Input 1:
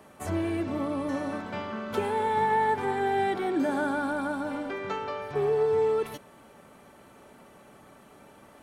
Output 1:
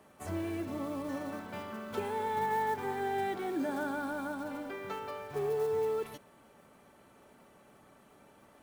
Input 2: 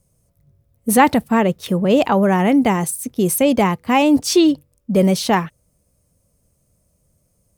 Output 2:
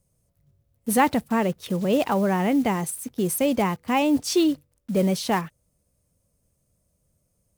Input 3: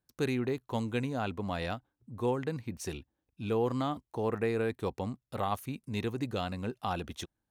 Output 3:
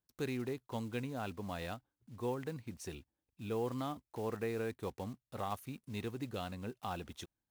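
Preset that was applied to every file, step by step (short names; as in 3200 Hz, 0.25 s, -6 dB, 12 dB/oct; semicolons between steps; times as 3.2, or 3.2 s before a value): block floating point 5-bit; gain -7 dB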